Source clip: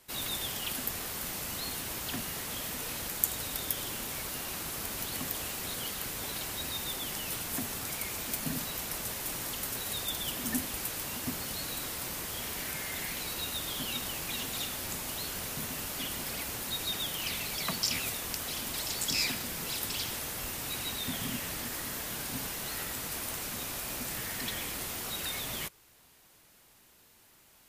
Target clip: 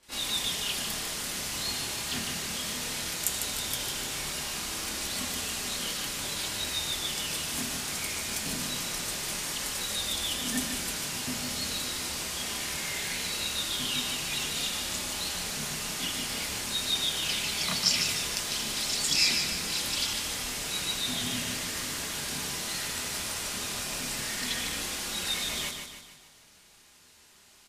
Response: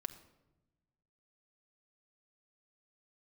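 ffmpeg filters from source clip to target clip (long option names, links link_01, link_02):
-filter_complex "[0:a]lowpass=7700,acontrast=85,flanger=delay=3.5:depth=9.4:regen=-55:speed=0.2:shape=sinusoidal,aecho=1:1:150|300|450|600|750|900:0.473|0.227|0.109|0.0523|0.0251|0.0121,asplit=2[link_01][link_02];[1:a]atrim=start_sample=2205,highshelf=frequency=2100:gain=12,adelay=28[link_03];[link_02][link_03]afir=irnorm=-1:irlink=0,volume=1.5dB[link_04];[link_01][link_04]amix=inputs=2:normalize=0,volume=-6dB"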